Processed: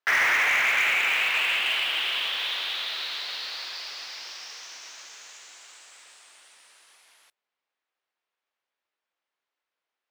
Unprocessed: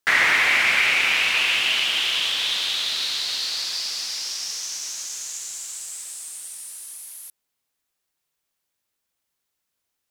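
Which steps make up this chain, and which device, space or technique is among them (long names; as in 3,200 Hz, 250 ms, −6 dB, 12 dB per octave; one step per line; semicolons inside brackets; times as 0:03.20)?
carbon microphone (band-pass filter 450–2,700 Hz; soft clipping −16 dBFS, distortion −16 dB; noise that follows the level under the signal 23 dB)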